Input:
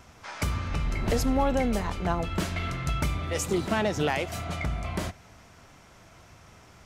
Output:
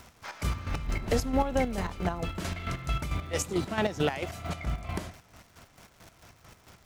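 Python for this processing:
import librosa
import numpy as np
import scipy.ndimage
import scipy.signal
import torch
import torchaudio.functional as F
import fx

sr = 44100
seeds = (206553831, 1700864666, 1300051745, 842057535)

y = fx.dmg_crackle(x, sr, seeds[0], per_s=320.0, level_db=-41.0)
y = fx.chopper(y, sr, hz=4.5, depth_pct=60, duty_pct=40)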